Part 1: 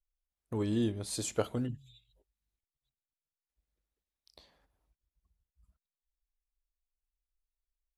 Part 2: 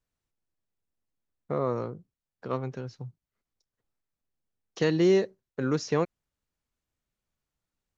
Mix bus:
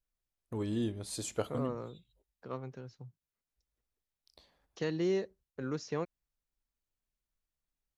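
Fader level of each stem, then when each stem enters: −3.0, −9.5 decibels; 0.00, 0.00 seconds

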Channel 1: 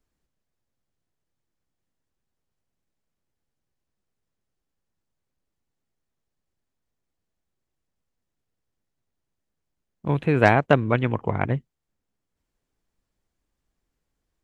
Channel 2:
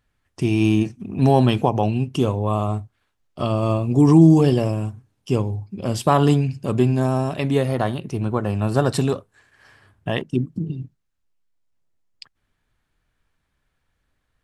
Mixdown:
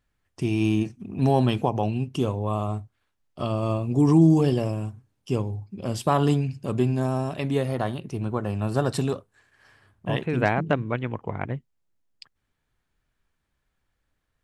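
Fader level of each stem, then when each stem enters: −6.0, −5.0 decibels; 0.00, 0.00 seconds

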